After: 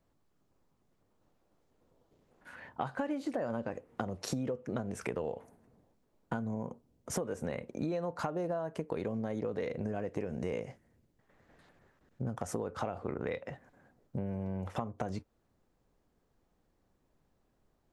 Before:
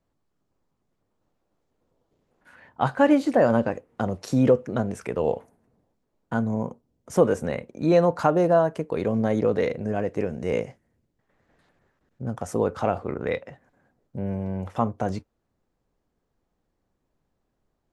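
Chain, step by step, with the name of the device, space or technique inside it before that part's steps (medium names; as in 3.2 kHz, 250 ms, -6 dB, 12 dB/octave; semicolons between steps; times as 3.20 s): serial compression, peaks first (compression, threshold -27 dBFS, peak gain reduction 14 dB; compression 2.5:1, threshold -36 dBFS, peak gain reduction 8.5 dB); trim +1.5 dB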